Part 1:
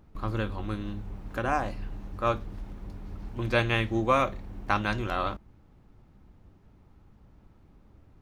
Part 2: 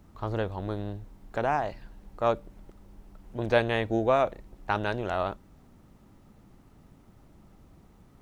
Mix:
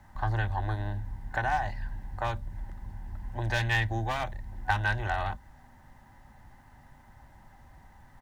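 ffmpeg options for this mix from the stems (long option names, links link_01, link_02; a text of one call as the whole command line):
ffmpeg -i stem1.wav -i stem2.wav -filter_complex "[0:a]afwtdn=0.0158,asoftclip=type=hard:threshold=-17.5dB,volume=0dB[link_01];[1:a]adelay=0.4,volume=1dB[link_02];[link_01][link_02]amix=inputs=2:normalize=0,equalizer=frequency=190:width_type=o:width=0.35:gain=-11.5,acrossover=split=230|3000[link_03][link_04][link_05];[link_04]acompressor=threshold=-33dB:ratio=6[link_06];[link_03][link_06][link_05]amix=inputs=3:normalize=0,superequalizer=6b=0.398:7b=0.316:9b=2.82:11b=3.55" out.wav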